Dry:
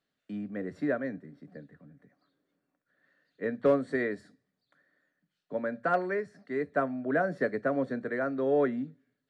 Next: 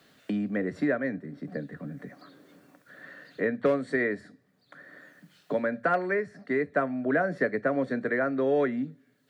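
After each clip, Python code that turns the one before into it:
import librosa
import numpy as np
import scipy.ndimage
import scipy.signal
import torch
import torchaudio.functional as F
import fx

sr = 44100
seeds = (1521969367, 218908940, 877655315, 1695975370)

y = scipy.signal.sosfilt(scipy.signal.butter(2, 54.0, 'highpass', fs=sr, output='sos'), x)
y = fx.dynamic_eq(y, sr, hz=2100.0, q=2.1, threshold_db=-51.0, ratio=4.0, max_db=5)
y = fx.band_squash(y, sr, depth_pct=70)
y = F.gain(torch.from_numpy(y), 2.5).numpy()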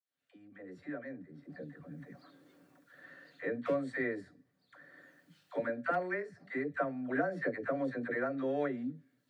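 y = fx.fade_in_head(x, sr, length_s=2.27)
y = fx.notch_comb(y, sr, f0_hz=210.0)
y = fx.dispersion(y, sr, late='lows', ms=69.0, hz=550.0)
y = F.gain(torch.from_numpy(y), -6.5).numpy()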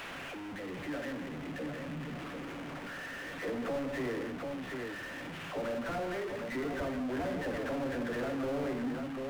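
y = fx.delta_mod(x, sr, bps=16000, step_db=-46.5)
y = fx.echo_multitap(y, sr, ms=(59, 168, 743), db=(-8.5, -9.0, -8.0))
y = fx.power_curve(y, sr, exponent=0.5)
y = F.gain(torch.from_numpy(y), -4.5).numpy()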